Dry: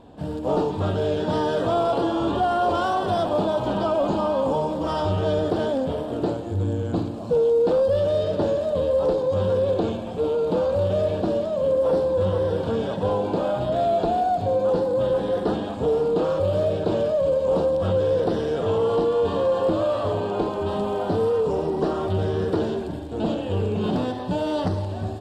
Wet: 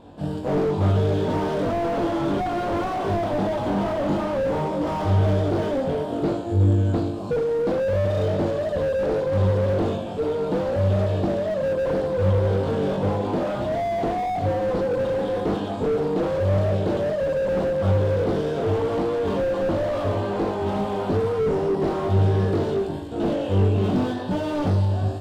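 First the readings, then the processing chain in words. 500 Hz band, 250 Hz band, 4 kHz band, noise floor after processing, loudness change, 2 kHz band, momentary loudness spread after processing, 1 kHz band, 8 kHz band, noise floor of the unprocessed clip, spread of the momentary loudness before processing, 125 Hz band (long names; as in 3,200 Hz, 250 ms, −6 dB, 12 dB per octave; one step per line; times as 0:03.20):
−1.5 dB, +1.5 dB, −2.5 dB, −29 dBFS, 0.0 dB, +2.5 dB, 4 LU, −2.0 dB, can't be measured, −31 dBFS, 5 LU, +6.0 dB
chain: flutter between parallel walls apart 3.5 metres, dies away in 0.28 s
slew-rate limiting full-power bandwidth 46 Hz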